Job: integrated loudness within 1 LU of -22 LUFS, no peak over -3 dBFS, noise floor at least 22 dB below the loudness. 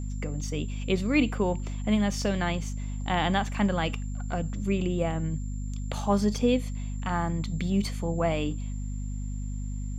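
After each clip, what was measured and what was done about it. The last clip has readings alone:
hum 50 Hz; highest harmonic 250 Hz; hum level -30 dBFS; steady tone 7.3 kHz; tone level -52 dBFS; loudness -29.0 LUFS; peak level -12.0 dBFS; loudness target -22.0 LUFS
-> de-hum 50 Hz, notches 5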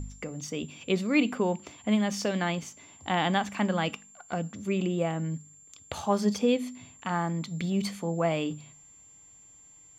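hum not found; steady tone 7.3 kHz; tone level -52 dBFS
-> band-stop 7.3 kHz, Q 30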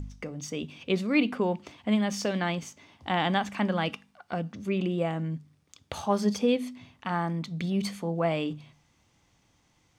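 steady tone not found; loudness -29.5 LUFS; peak level -12.0 dBFS; loudness target -22.0 LUFS
-> trim +7.5 dB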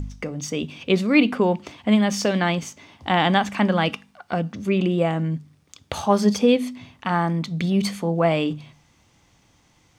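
loudness -22.0 LUFS; peak level -4.5 dBFS; noise floor -60 dBFS

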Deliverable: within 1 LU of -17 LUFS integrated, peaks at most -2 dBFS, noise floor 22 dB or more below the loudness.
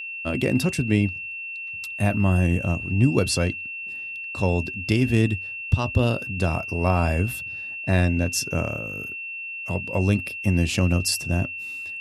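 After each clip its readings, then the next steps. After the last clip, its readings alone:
steady tone 2.7 kHz; tone level -31 dBFS; loudness -24.0 LUFS; peak level -6.0 dBFS; loudness target -17.0 LUFS
-> band-stop 2.7 kHz, Q 30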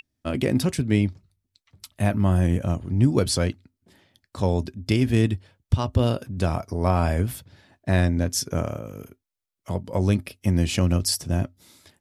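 steady tone not found; loudness -24.0 LUFS; peak level -6.5 dBFS; loudness target -17.0 LUFS
-> trim +7 dB; peak limiter -2 dBFS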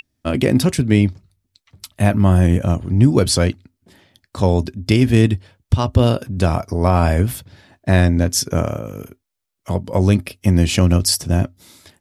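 loudness -17.0 LUFS; peak level -2.0 dBFS; noise floor -77 dBFS

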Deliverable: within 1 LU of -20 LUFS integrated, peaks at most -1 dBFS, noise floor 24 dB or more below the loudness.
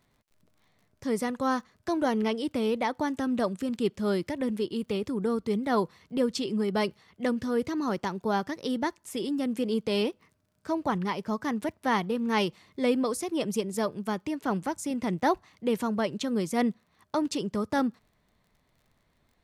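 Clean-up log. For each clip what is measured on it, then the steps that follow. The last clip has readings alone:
tick rate 32 per s; loudness -29.5 LUFS; peak level -14.0 dBFS; loudness target -20.0 LUFS
-> de-click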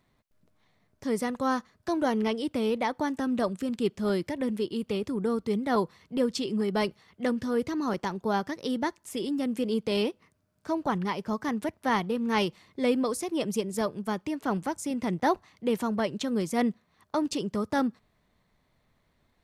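tick rate 0.051 per s; loudness -29.5 LUFS; peak level -14.0 dBFS; loudness target -20.0 LUFS
-> trim +9.5 dB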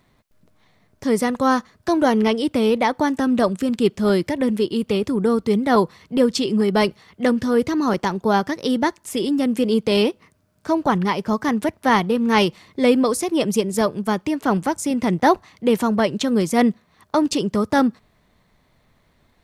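loudness -20.0 LUFS; peak level -4.5 dBFS; noise floor -62 dBFS

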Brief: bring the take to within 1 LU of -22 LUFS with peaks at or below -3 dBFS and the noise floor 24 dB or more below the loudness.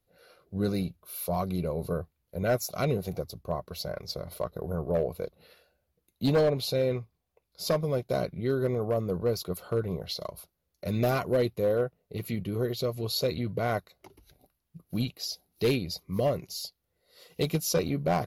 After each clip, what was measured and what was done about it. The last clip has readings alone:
clipped samples 0.5%; clipping level -19.0 dBFS; loudness -30.5 LUFS; peak level -19.0 dBFS; loudness target -22.0 LUFS
-> clip repair -19 dBFS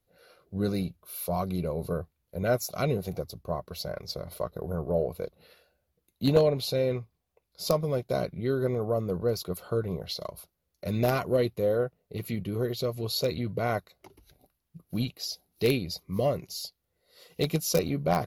clipped samples 0.0%; loudness -30.0 LUFS; peak level -10.0 dBFS; loudness target -22.0 LUFS
-> trim +8 dB; peak limiter -3 dBFS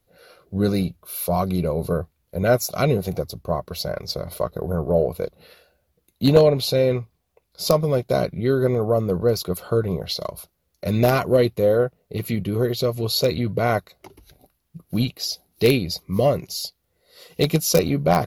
loudness -22.0 LUFS; peak level -3.0 dBFS; noise floor -72 dBFS

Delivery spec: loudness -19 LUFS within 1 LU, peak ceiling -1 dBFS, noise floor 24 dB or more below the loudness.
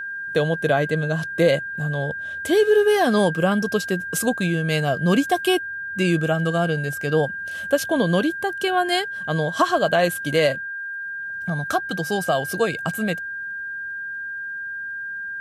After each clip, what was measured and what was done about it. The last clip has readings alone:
tick rate 35 per s; steady tone 1.6 kHz; tone level -28 dBFS; loudness -22.5 LUFS; peak level -5.0 dBFS; loudness target -19.0 LUFS
-> de-click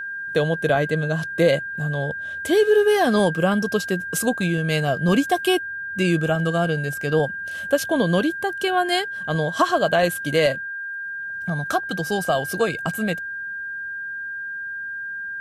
tick rate 0 per s; steady tone 1.6 kHz; tone level -28 dBFS
-> band-stop 1.6 kHz, Q 30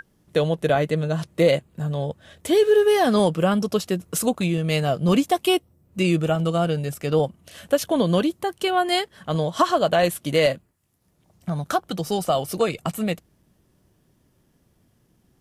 steady tone not found; loudness -22.5 LUFS; peak level -6.0 dBFS; loudness target -19.0 LUFS
-> trim +3.5 dB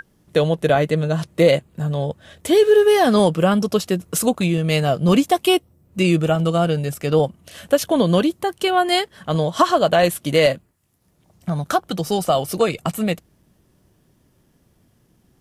loudness -19.0 LUFS; peak level -2.5 dBFS; noise floor -61 dBFS

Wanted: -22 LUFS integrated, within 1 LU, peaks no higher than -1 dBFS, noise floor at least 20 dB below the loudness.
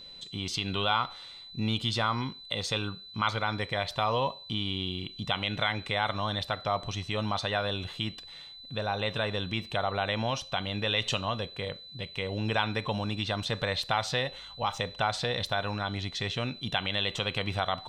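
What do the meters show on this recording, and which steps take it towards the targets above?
steady tone 4 kHz; tone level -45 dBFS; loudness -31.0 LUFS; peak level -11.5 dBFS; loudness target -22.0 LUFS
-> band-stop 4 kHz, Q 30; trim +9 dB

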